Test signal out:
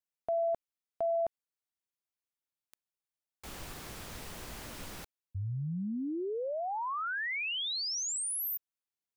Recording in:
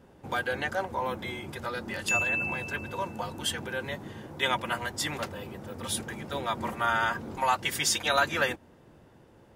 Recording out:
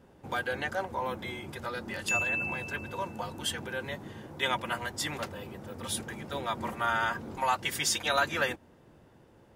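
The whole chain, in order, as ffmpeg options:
ffmpeg -i in.wav -af "acontrast=36,volume=-7.5dB" out.wav

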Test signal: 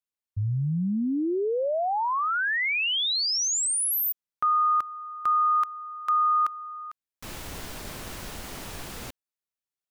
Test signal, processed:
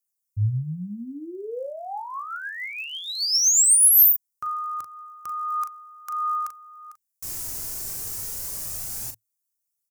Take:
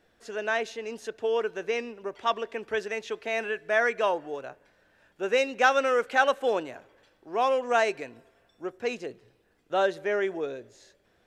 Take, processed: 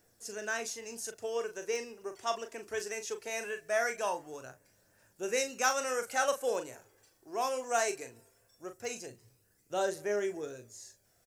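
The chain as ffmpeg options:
ffmpeg -i in.wav -filter_complex "[0:a]equalizer=frequency=110:width_type=o:width=0.42:gain=11,asplit=2[link_01][link_02];[link_02]adelay=39,volume=-8.5dB[link_03];[link_01][link_03]amix=inputs=2:normalize=0,aphaser=in_gain=1:out_gain=1:delay=3.1:decay=0.32:speed=0.2:type=triangular,aexciter=amount=4.6:drive=9:freq=5100,volume=-8.5dB" out.wav

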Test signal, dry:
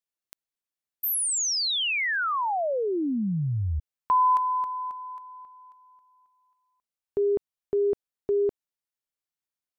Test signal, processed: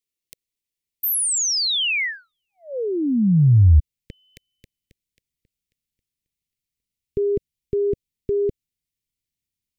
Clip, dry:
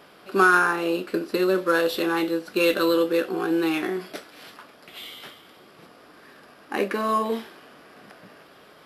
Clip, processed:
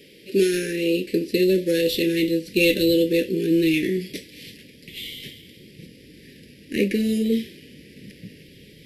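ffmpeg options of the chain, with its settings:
ffmpeg -i in.wav -af "asubboost=boost=4.5:cutoff=190,acontrast=26,asuperstop=centerf=1000:order=12:qfactor=0.71" out.wav

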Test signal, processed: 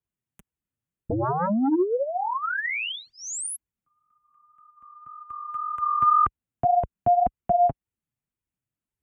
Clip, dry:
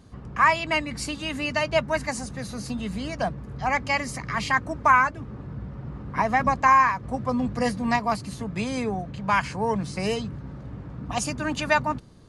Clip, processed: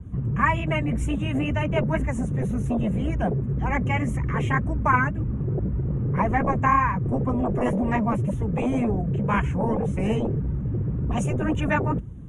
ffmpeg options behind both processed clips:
ffmpeg -i in.wav -filter_complex "[0:a]highpass=45,highshelf=frequency=8100:gain=-5,acrossover=split=490[link_01][link_02];[link_01]acompressor=threshold=-21dB:ratio=6[link_03];[link_03][link_02]amix=inputs=2:normalize=0,flanger=delay=2:depth=6.5:regen=16:speed=1.9:shape=sinusoidal,acrossover=split=220|1900[link_04][link_05][link_06];[link_04]aeval=exprs='0.0841*sin(PI/2*7.08*val(0)/0.0841)':channel_layout=same[link_07];[link_07][link_05][link_06]amix=inputs=3:normalize=0,asuperstop=centerf=4600:order=4:qfactor=1.3,adynamicequalizer=threshold=0.01:dfrequency=3200:dqfactor=0.7:tfrequency=3200:tqfactor=0.7:attack=5:release=100:ratio=0.375:range=1.5:mode=cutabove:tftype=highshelf" out.wav

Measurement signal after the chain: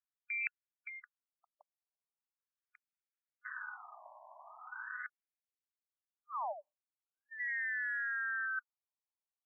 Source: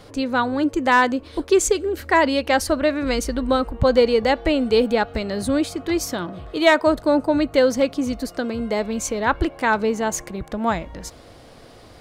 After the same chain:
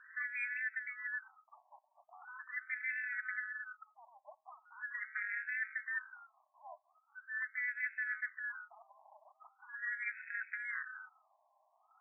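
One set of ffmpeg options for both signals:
ffmpeg -i in.wav -af "afftfilt=real='real(if(lt(b,272),68*(eq(floor(b/68),0)*1+eq(floor(b/68),1)*0+eq(floor(b/68),2)*3+eq(floor(b/68),3)*2)+mod(b,68),b),0)':imag='imag(if(lt(b,272),68*(eq(floor(b/68),0)*1+eq(floor(b/68),1)*0+eq(floor(b/68),2)*3+eq(floor(b/68),3)*2)+mod(b,68),b),0)':win_size=2048:overlap=0.75,highshelf=frequency=5900:gain=-2.5,areverse,acompressor=threshold=-25dB:ratio=20,areverse,tremolo=f=240:d=0.788,afftfilt=real='re*between(b*sr/1024,790*pow(1900/790,0.5+0.5*sin(2*PI*0.41*pts/sr))/1.41,790*pow(1900/790,0.5+0.5*sin(2*PI*0.41*pts/sr))*1.41)':imag='im*between(b*sr/1024,790*pow(1900/790,0.5+0.5*sin(2*PI*0.41*pts/sr))/1.41,790*pow(1900/790,0.5+0.5*sin(2*PI*0.41*pts/sr))*1.41)':win_size=1024:overlap=0.75,volume=-6.5dB" out.wav

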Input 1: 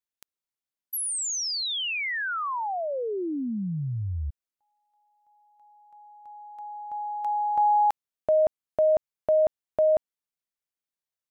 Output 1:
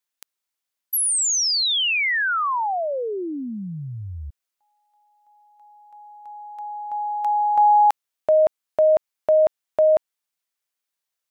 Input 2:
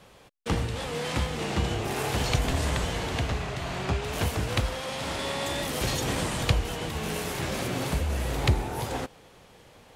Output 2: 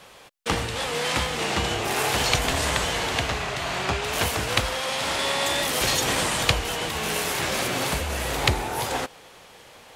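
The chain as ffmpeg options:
ffmpeg -i in.wav -af "lowshelf=frequency=400:gain=-12,volume=8.5dB" out.wav

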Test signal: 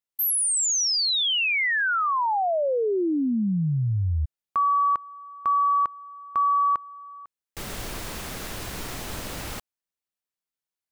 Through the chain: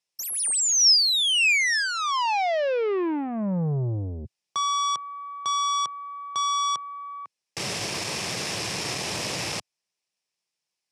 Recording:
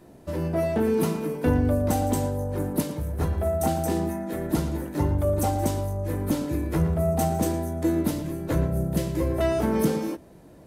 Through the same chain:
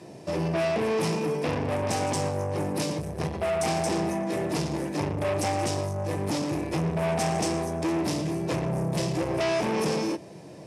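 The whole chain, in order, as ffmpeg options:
ffmpeg -i in.wav -af "aeval=exprs='(tanh(31.6*val(0)+0.2)-tanh(0.2))/31.6':channel_layout=same,highpass=frequency=110:width=0.5412,highpass=frequency=110:width=1.3066,equalizer=frequency=250:width_type=q:width=4:gain=-8,equalizer=frequency=1400:width_type=q:width=4:gain=-7,equalizer=frequency=2500:width_type=q:width=4:gain=5,equalizer=frequency=5300:width_type=q:width=4:gain=9,lowpass=frequency=9900:width=0.5412,lowpass=frequency=9900:width=1.3066,volume=7.5dB" out.wav

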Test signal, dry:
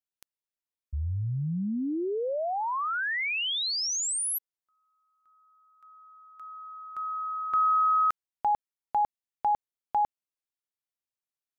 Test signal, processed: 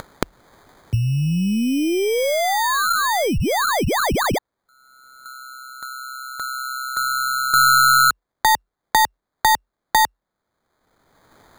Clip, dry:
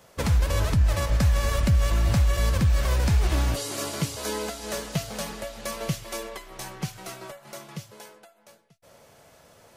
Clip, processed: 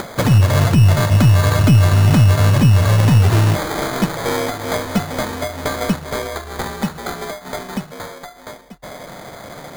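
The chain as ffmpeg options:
ffmpeg -i in.wav -filter_complex "[0:a]asplit=2[link_01][link_02];[link_02]acompressor=mode=upward:threshold=-27dB:ratio=2.5:attack=77:release=651:knee=2.83:detection=peak,volume=-0.5dB[link_03];[link_01][link_03]amix=inputs=2:normalize=0,afreqshift=43,acrusher=samples=16:mix=1:aa=0.000001,aeval=exprs='1.88*(cos(1*acos(clip(val(0)/1.88,-1,1)))-cos(1*PI/2))+0.75*(cos(5*acos(clip(val(0)/1.88,-1,1)))-cos(5*PI/2))+0.188*(cos(8*acos(clip(val(0)/1.88,-1,1)))-cos(8*PI/2))':channel_layout=same,volume=-5.5dB" out.wav

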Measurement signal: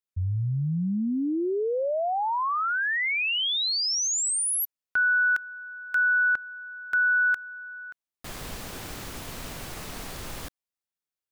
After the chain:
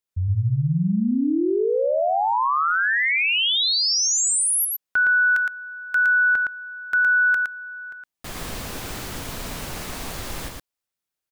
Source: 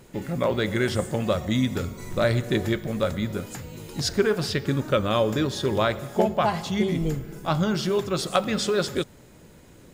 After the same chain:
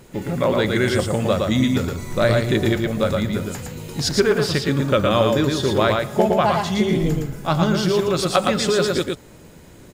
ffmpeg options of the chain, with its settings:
ffmpeg -i in.wav -af "aecho=1:1:114:0.668,volume=4dB" out.wav

